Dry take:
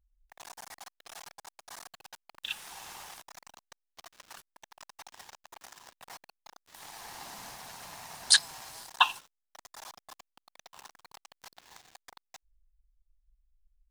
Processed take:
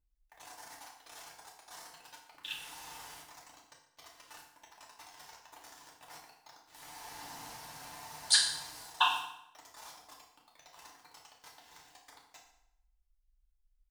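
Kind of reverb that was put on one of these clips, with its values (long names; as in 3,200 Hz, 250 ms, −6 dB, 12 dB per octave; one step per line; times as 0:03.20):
feedback delay network reverb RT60 0.79 s, low-frequency decay 1×, high-frequency decay 0.85×, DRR −3.5 dB
level −7.5 dB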